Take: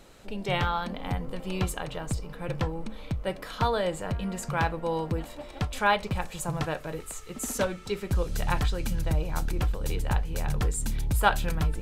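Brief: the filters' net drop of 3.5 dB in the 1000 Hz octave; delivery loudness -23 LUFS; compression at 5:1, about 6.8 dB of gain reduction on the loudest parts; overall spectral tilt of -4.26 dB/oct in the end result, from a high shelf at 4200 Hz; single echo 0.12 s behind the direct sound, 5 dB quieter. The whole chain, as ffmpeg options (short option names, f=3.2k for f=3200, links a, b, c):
-af "equalizer=f=1k:t=o:g=-5,highshelf=f=4.2k:g=8,acompressor=threshold=-28dB:ratio=5,aecho=1:1:120:0.562,volume=10dB"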